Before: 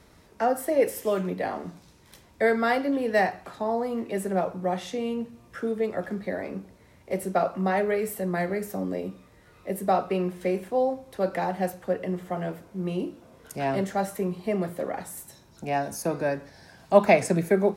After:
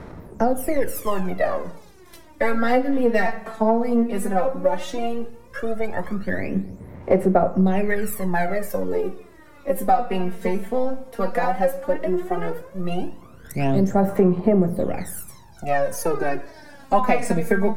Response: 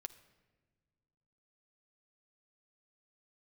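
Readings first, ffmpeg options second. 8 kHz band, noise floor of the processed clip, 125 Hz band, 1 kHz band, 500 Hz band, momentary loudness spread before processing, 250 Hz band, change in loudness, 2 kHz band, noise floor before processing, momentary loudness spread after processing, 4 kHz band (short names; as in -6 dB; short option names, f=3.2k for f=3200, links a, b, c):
+3.0 dB, -46 dBFS, +6.5 dB, +4.5 dB, +3.0 dB, 11 LU, +6.5 dB, +4.0 dB, +3.0 dB, -56 dBFS, 12 LU, +1.5 dB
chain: -filter_complex "[0:a]aeval=exprs='if(lt(val(0),0),0.708*val(0),val(0))':c=same,aphaser=in_gain=1:out_gain=1:delay=4.5:decay=0.8:speed=0.14:type=sinusoidal,highshelf=f=11k:g=4.5,asplit=2[a][b];[1:a]atrim=start_sample=2205,afade=t=out:st=0.35:d=0.01,atrim=end_sample=15876,lowpass=2.4k[c];[b][c]afir=irnorm=-1:irlink=0,volume=4dB[d];[a][d]amix=inputs=2:normalize=0,acompressor=threshold=-15dB:ratio=3"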